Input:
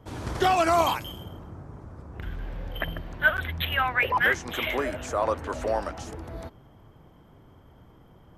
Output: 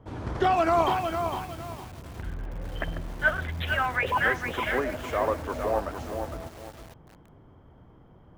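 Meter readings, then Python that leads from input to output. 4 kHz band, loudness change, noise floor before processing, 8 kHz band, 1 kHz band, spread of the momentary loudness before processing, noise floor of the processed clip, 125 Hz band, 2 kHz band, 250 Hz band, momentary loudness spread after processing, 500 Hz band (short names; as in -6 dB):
-5.5 dB, -1.5 dB, -54 dBFS, -6.0 dB, 0.0 dB, 20 LU, -54 dBFS, +0.5 dB, -2.0 dB, +1.0 dB, 16 LU, +0.5 dB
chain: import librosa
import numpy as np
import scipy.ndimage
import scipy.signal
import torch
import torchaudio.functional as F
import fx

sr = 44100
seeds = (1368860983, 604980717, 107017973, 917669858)

y = fx.lowpass(x, sr, hz=1700.0, slope=6)
y = y + 10.0 ** (-22.5 / 20.0) * np.pad(y, (int(109 * sr / 1000.0), 0))[:len(y)]
y = fx.echo_crushed(y, sr, ms=457, feedback_pct=35, bits=7, wet_db=-6.0)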